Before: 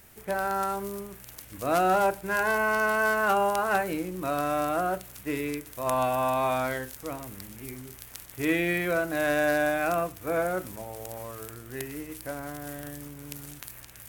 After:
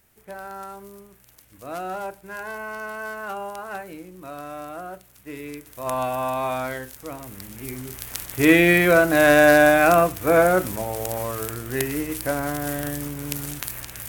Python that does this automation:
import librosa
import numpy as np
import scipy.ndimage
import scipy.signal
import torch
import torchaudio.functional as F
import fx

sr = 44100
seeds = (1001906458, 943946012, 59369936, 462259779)

y = fx.gain(x, sr, db=fx.line((5.13, -8.0), (5.88, 0.5), (7.12, 0.5), (8.16, 11.0)))